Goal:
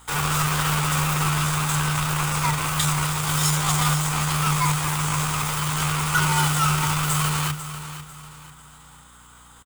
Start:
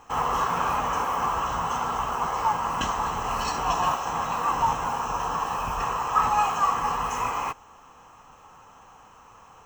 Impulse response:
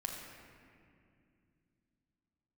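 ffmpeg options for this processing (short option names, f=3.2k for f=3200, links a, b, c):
-filter_complex "[0:a]crystalizer=i=9:c=0,aeval=exprs='0.631*(cos(1*acos(clip(val(0)/0.631,-1,1)))-cos(1*PI/2))+0.0141*(cos(6*acos(clip(val(0)/0.631,-1,1)))-cos(6*PI/2))+0.158*(cos(8*acos(clip(val(0)/0.631,-1,1)))-cos(8*PI/2))':c=same,afreqshift=-120,asetrate=55563,aresample=44100,atempo=0.793701,aeval=exprs='val(0)+0.00501*(sin(2*PI*60*n/s)+sin(2*PI*2*60*n/s)/2+sin(2*PI*3*60*n/s)/3+sin(2*PI*4*60*n/s)/4+sin(2*PI*5*60*n/s)/5)':c=same,asplit=2[a][b];[b]aecho=0:1:496|992|1488|1984:0.251|0.0904|0.0326|0.0117[c];[a][c]amix=inputs=2:normalize=0,volume=-6.5dB"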